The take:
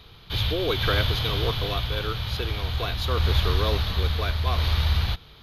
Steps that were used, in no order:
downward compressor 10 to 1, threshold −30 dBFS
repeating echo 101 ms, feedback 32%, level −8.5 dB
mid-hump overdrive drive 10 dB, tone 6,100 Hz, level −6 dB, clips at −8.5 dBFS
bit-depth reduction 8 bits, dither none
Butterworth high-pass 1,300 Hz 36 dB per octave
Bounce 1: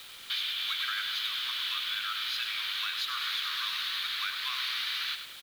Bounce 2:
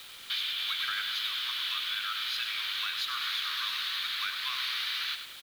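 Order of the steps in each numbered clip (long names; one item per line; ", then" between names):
mid-hump overdrive, then Butterworth high-pass, then downward compressor, then repeating echo, then bit-depth reduction
Butterworth high-pass, then mid-hump overdrive, then downward compressor, then repeating echo, then bit-depth reduction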